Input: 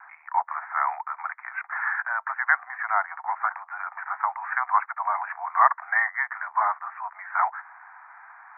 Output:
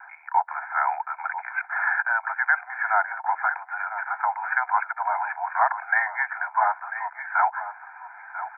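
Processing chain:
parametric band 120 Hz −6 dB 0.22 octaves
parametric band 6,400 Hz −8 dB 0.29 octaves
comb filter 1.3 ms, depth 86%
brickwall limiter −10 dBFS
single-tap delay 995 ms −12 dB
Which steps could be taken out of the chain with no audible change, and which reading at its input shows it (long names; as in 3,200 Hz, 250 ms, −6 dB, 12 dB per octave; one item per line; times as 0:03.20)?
parametric band 120 Hz: nothing at its input below 570 Hz
parametric band 6,400 Hz: nothing at its input above 2,400 Hz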